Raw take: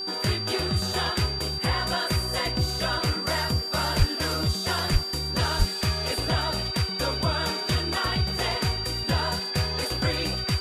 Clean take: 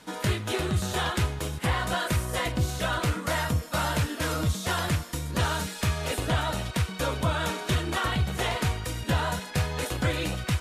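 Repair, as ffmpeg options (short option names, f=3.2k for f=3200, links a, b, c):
-filter_complex "[0:a]bandreject=f=384.6:t=h:w=4,bandreject=f=769.2:t=h:w=4,bandreject=f=1.1538k:t=h:w=4,bandreject=f=1.5384k:t=h:w=4,bandreject=f=4.7k:w=30,asplit=3[a][b][c];[a]afade=t=out:st=3.98:d=0.02[d];[b]highpass=f=140:w=0.5412,highpass=f=140:w=1.3066,afade=t=in:st=3.98:d=0.02,afade=t=out:st=4.1:d=0.02[e];[c]afade=t=in:st=4.1:d=0.02[f];[d][e][f]amix=inputs=3:normalize=0,asplit=3[g][h][i];[g]afade=t=out:st=4.92:d=0.02[j];[h]highpass=f=140:w=0.5412,highpass=f=140:w=1.3066,afade=t=in:st=4.92:d=0.02,afade=t=out:st=5.04:d=0.02[k];[i]afade=t=in:st=5.04:d=0.02[l];[j][k][l]amix=inputs=3:normalize=0,asplit=3[m][n][o];[m]afade=t=out:st=5.58:d=0.02[p];[n]highpass=f=140:w=0.5412,highpass=f=140:w=1.3066,afade=t=in:st=5.58:d=0.02,afade=t=out:st=5.7:d=0.02[q];[o]afade=t=in:st=5.7:d=0.02[r];[p][q][r]amix=inputs=3:normalize=0"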